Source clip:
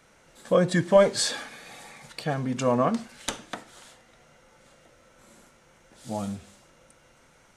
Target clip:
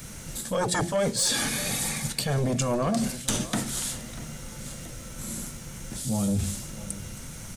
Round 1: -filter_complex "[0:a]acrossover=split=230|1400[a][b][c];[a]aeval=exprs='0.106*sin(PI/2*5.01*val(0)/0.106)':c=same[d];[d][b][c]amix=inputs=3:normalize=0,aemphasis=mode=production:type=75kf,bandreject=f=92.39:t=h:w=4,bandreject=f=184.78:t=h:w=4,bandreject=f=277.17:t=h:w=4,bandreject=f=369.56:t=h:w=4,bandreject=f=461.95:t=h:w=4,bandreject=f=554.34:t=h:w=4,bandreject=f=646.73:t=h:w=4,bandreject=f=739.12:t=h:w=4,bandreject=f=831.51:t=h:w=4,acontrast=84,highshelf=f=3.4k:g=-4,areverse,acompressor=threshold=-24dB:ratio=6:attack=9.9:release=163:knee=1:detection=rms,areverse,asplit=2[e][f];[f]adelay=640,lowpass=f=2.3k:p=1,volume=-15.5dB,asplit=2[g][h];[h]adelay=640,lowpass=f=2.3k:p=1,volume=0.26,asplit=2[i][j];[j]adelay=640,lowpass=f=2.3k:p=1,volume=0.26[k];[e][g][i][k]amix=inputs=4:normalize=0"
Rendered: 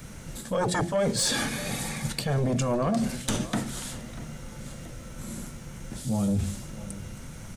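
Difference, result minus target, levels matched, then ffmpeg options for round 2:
8000 Hz band -4.5 dB
-filter_complex "[0:a]acrossover=split=230|1400[a][b][c];[a]aeval=exprs='0.106*sin(PI/2*5.01*val(0)/0.106)':c=same[d];[d][b][c]amix=inputs=3:normalize=0,aemphasis=mode=production:type=75kf,bandreject=f=92.39:t=h:w=4,bandreject=f=184.78:t=h:w=4,bandreject=f=277.17:t=h:w=4,bandreject=f=369.56:t=h:w=4,bandreject=f=461.95:t=h:w=4,bandreject=f=554.34:t=h:w=4,bandreject=f=646.73:t=h:w=4,bandreject=f=739.12:t=h:w=4,bandreject=f=831.51:t=h:w=4,acontrast=84,highshelf=f=3.4k:g=5,areverse,acompressor=threshold=-24dB:ratio=6:attack=9.9:release=163:knee=1:detection=rms,areverse,asplit=2[e][f];[f]adelay=640,lowpass=f=2.3k:p=1,volume=-15.5dB,asplit=2[g][h];[h]adelay=640,lowpass=f=2.3k:p=1,volume=0.26,asplit=2[i][j];[j]adelay=640,lowpass=f=2.3k:p=1,volume=0.26[k];[e][g][i][k]amix=inputs=4:normalize=0"

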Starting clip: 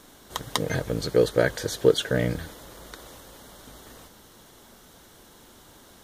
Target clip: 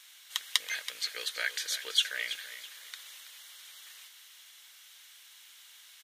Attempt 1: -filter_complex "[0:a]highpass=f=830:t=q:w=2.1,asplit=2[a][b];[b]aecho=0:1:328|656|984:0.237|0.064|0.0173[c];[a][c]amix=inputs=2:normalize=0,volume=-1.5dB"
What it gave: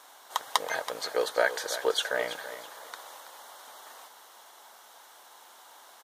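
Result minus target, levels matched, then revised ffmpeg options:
1000 Hz band +15.0 dB
-filter_complex "[0:a]highpass=f=2.4k:t=q:w=2.1,asplit=2[a][b];[b]aecho=0:1:328|656|984:0.237|0.064|0.0173[c];[a][c]amix=inputs=2:normalize=0,volume=-1.5dB"

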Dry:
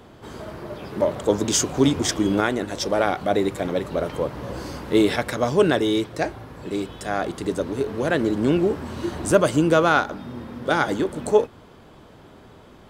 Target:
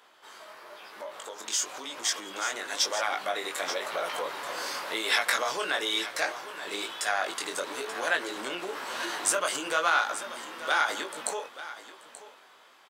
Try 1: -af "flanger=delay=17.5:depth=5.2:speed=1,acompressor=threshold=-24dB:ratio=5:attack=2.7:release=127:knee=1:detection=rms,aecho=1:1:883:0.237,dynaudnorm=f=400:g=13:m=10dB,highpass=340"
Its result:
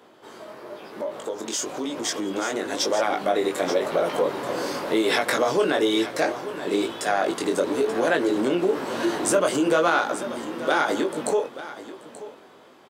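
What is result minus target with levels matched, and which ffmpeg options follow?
250 Hz band +12.5 dB
-af "flanger=delay=17.5:depth=5.2:speed=1,acompressor=threshold=-24dB:ratio=5:attack=2.7:release=127:knee=1:detection=rms,aecho=1:1:883:0.237,dynaudnorm=f=400:g=13:m=10dB,highpass=1.1k"

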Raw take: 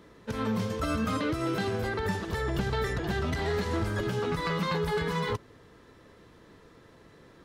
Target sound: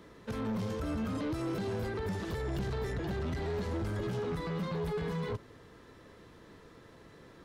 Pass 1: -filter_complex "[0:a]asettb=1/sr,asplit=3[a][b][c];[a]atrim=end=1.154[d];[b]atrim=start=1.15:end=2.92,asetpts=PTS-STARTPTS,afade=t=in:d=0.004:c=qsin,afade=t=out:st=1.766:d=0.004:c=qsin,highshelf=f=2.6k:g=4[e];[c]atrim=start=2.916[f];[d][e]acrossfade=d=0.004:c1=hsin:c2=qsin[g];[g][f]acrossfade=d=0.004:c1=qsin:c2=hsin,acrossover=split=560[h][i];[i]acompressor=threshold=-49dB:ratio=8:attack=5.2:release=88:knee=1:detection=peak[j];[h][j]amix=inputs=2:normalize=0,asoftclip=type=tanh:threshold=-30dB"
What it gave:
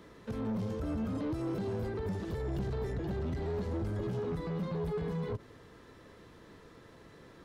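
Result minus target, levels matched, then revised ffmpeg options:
compressor: peak gain reduction +7 dB
-filter_complex "[0:a]asettb=1/sr,asplit=3[a][b][c];[a]atrim=end=1.154[d];[b]atrim=start=1.15:end=2.92,asetpts=PTS-STARTPTS,afade=t=in:d=0.004:c=qsin,afade=t=out:st=1.766:d=0.004:c=qsin,highshelf=f=2.6k:g=4[e];[c]atrim=start=2.916[f];[d][e]acrossfade=d=0.004:c1=hsin:c2=qsin[g];[g][f]acrossfade=d=0.004:c1=qsin:c2=hsin,acrossover=split=560[h][i];[i]acompressor=threshold=-41dB:ratio=8:attack=5.2:release=88:knee=1:detection=peak[j];[h][j]amix=inputs=2:normalize=0,asoftclip=type=tanh:threshold=-30dB"

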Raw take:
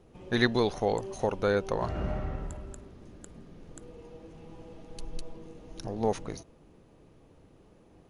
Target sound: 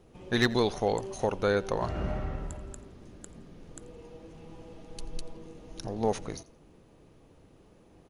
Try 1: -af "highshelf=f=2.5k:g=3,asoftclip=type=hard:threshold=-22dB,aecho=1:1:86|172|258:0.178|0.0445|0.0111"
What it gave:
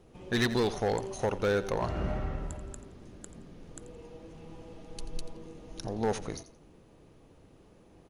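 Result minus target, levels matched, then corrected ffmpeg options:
hard clip: distortion +10 dB; echo-to-direct +7 dB
-af "highshelf=f=2.5k:g=3,asoftclip=type=hard:threshold=-15.5dB,aecho=1:1:86|172:0.0794|0.0199"

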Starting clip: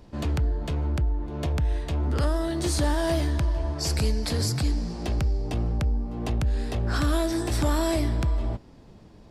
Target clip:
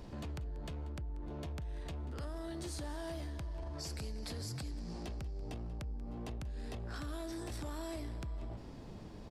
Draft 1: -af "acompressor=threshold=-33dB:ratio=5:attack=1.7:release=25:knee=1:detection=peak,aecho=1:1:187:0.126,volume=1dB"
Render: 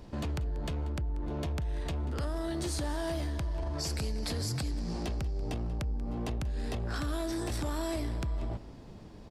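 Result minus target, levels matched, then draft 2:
compressor: peak gain reduction -8.5 dB
-af "acompressor=threshold=-43.5dB:ratio=5:attack=1.7:release=25:knee=1:detection=peak,aecho=1:1:187:0.126,volume=1dB"

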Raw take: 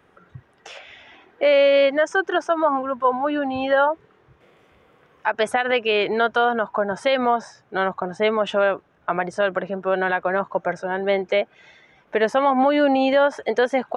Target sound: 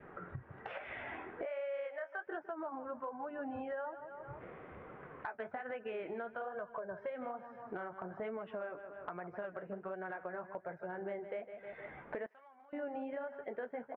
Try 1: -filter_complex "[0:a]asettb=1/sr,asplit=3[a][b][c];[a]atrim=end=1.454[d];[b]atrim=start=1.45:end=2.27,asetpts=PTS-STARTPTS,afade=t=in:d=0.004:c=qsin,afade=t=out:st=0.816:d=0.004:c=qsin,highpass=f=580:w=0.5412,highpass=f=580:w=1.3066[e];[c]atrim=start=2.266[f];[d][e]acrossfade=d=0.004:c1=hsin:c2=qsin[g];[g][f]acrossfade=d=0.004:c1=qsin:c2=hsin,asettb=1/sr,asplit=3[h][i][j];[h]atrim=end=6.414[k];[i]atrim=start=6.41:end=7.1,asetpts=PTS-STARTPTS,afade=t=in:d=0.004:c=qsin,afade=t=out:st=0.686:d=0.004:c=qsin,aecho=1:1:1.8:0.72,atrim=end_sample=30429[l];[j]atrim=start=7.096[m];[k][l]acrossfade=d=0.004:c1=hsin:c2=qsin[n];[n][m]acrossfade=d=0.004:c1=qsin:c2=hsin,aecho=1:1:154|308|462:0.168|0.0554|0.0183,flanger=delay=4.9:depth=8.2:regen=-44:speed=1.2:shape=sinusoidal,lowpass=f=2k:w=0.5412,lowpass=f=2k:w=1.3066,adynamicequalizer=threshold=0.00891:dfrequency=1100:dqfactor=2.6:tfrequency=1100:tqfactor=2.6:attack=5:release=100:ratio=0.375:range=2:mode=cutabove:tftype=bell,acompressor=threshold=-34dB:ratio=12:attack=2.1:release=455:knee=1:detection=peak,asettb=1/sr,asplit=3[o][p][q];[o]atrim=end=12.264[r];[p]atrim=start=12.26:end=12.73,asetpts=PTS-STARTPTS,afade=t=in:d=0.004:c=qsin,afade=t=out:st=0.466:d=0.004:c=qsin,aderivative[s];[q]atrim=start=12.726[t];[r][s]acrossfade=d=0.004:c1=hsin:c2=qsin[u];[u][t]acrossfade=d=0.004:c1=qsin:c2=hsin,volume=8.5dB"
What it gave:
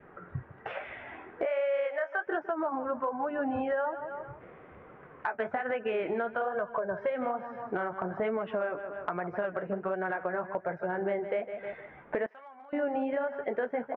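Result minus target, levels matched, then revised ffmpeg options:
compressor: peak gain reduction -10.5 dB
-filter_complex "[0:a]asettb=1/sr,asplit=3[a][b][c];[a]atrim=end=1.454[d];[b]atrim=start=1.45:end=2.27,asetpts=PTS-STARTPTS,afade=t=in:d=0.004:c=qsin,afade=t=out:st=0.816:d=0.004:c=qsin,highpass=f=580:w=0.5412,highpass=f=580:w=1.3066[e];[c]atrim=start=2.266[f];[d][e]acrossfade=d=0.004:c1=hsin:c2=qsin[g];[g][f]acrossfade=d=0.004:c1=qsin:c2=hsin,asettb=1/sr,asplit=3[h][i][j];[h]atrim=end=6.414[k];[i]atrim=start=6.41:end=7.1,asetpts=PTS-STARTPTS,afade=t=in:d=0.004:c=qsin,afade=t=out:st=0.686:d=0.004:c=qsin,aecho=1:1:1.8:0.72,atrim=end_sample=30429[l];[j]atrim=start=7.096[m];[k][l]acrossfade=d=0.004:c1=hsin:c2=qsin[n];[n][m]acrossfade=d=0.004:c1=qsin:c2=hsin,aecho=1:1:154|308|462:0.168|0.0554|0.0183,flanger=delay=4.9:depth=8.2:regen=-44:speed=1.2:shape=sinusoidal,lowpass=f=2k:w=0.5412,lowpass=f=2k:w=1.3066,adynamicequalizer=threshold=0.00891:dfrequency=1100:dqfactor=2.6:tfrequency=1100:tqfactor=2.6:attack=5:release=100:ratio=0.375:range=2:mode=cutabove:tftype=bell,acompressor=threshold=-45.5dB:ratio=12:attack=2.1:release=455:knee=1:detection=peak,asettb=1/sr,asplit=3[o][p][q];[o]atrim=end=12.264[r];[p]atrim=start=12.26:end=12.73,asetpts=PTS-STARTPTS,afade=t=in:d=0.004:c=qsin,afade=t=out:st=0.466:d=0.004:c=qsin,aderivative[s];[q]atrim=start=12.726[t];[r][s]acrossfade=d=0.004:c1=hsin:c2=qsin[u];[u][t]acrossfade=d=0.004:c1=qsin:c2=hsin,volume=8.5dB"

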